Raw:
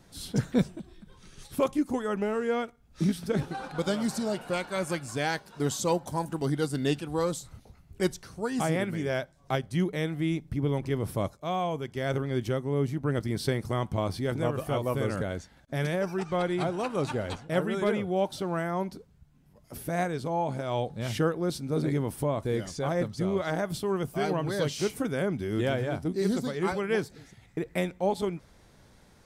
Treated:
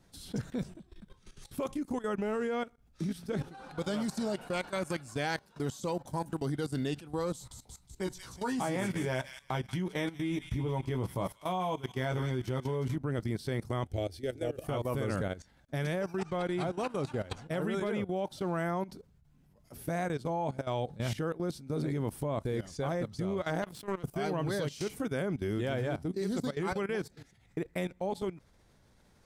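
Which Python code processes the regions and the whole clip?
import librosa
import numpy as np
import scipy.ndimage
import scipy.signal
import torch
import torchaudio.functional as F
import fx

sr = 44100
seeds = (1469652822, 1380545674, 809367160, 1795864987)

y = fx.chain(x, sr, fx.peak_eq(hz=930.0, db=9.0, octaves=0.3),
    fx.doubler(ms=16.0, db=-5.5),
    fx.echo_wet_highpass(ms=181, feedback_pct=57, hz=2600.0, wet_db=-5.0), at=(7.33, 12.96))
y = fx.chain(y, sr, fx.peak_eq(hz=78.0, db=8.0, octaves=0.21),
    fx.fixed_phaser(hz=430.0, stages=4), at=(13.85, 14.64))
y = fx.chain(y, sr, fx.highpass(hz=100.0, slope=12),
    fx.power_curve(exponent=2.0),
    fx.pre_swell(db_per_s=50.0), at=(23.62, 24.04))
y = fx.low_shelf(y, sr, hz=92.0, db=3.0)
y = fx.level_steps(y, sr, step_db=16)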